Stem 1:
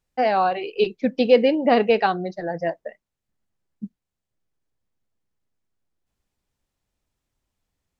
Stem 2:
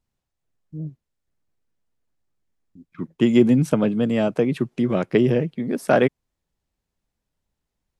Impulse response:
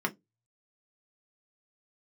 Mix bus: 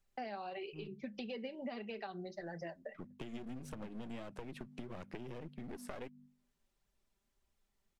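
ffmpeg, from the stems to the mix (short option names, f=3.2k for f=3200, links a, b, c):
-filter_complex "[0:a]aecho=1:1:5.1:0.58,acrossover=split=220[a][b];[b]acompressor=threshold=-26dB:ratio=2[c];[a][c]amix=inputs=2:normalize=0,volume=-1dB,asplit=2[d][e];[e]volume=-20dB[f];[1:a]bandreject=f=49.45:t=h:w=4,bandreject=f=98.9:t=h:w=4,bandreject=f=148.35:t=h:w=4,bandreject=f=197.8:t=h:w=4,bandreject=f=247.25:t=h:w=4,acompressor=threshold=-20dB:ratio=6,aeval=exprs='clip(val(0),-1,0.0282)':c=same,volume=-6.5dB,asplit=2[g][h];[h]apad=whole_len=352854[i];[d][i]sidechaincompress=threshold=-54dB:ratio=8:attack=48:release=234[j];[2:a]atrim=start_sample=2205[k];[f][k]afir=irnorm=-1:irlink=0[l];[j][g][l]amix=inputs=3:normalize=0,acrossover=split=1200|2600[m][n][o];[m]acompressor=threshold=-33dB:ratio=4[p];[n]acompressor=threshold=-46dB:ratio=4[q];[o]acompressor=threshold=-45dB:ratio=4[r];[p][q][r]amix=inputs=3:normalize=0,flanger=delay=0.5:depth=5:regen=64:speed=1.6:shape=triangular,acompressor=threshold=-45dB:ratio=2"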